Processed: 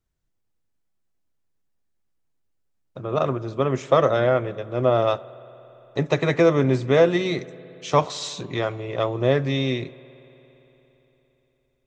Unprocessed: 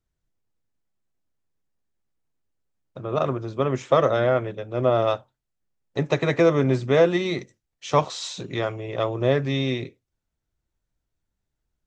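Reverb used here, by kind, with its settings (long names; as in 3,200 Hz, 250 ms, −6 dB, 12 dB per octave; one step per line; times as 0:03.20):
spring reverb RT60 3.8 s, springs 57 ms, chirp 40 ms, DRR 19.5 dB
level +1 dB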